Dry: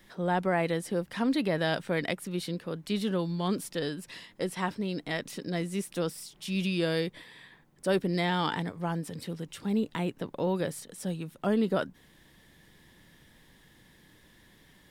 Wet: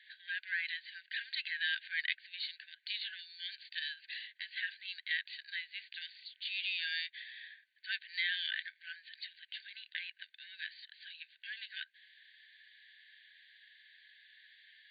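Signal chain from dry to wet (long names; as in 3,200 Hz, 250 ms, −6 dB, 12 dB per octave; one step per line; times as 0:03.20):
in parallel at −5 dB: hard clipping −29 dBFS, distortion −8 dB
on the sum: linear-phase brick-wall band-pass 1,500–4,700 Hz
level −1.5 dB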